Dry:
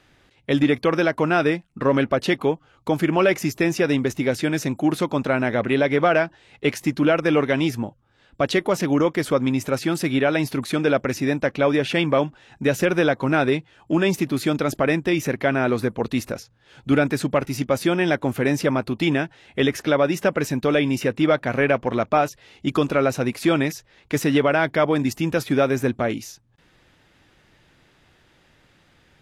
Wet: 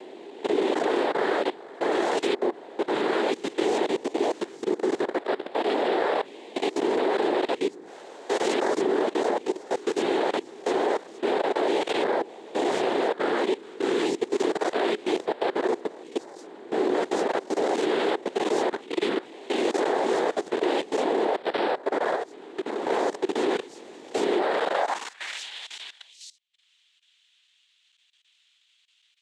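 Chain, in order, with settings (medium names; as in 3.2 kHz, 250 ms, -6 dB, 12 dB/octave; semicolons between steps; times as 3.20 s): reverse spectral sustain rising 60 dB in 1.77 s; noise-vocoded speech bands 6; level held to a coarse grid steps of 19 dB; high-pass sweep 380 Hz -> 3.1 kHz, 24.60–25.43 s; 22.15–22.87 s: compression 3:1, threshold -20 dBFS, peak gain reduction 6.5 dB; trim -8.5 dB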